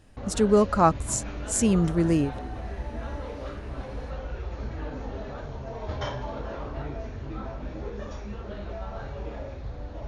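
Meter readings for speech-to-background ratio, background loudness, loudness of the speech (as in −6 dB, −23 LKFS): 12.5 dB, −36.5 LKFS, −24.0 LKFS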